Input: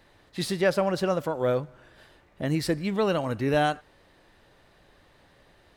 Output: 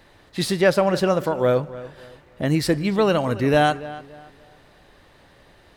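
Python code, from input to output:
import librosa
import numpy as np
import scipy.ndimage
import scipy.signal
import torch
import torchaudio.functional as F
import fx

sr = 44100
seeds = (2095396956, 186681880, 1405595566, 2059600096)

y = fx.echo_filtered(x, sr, ms=286, feedback_pct=31, hz=3400.0, wet_db=-16.5)
y = F.gain(torch.from_numpy(y), 6.0).numpy()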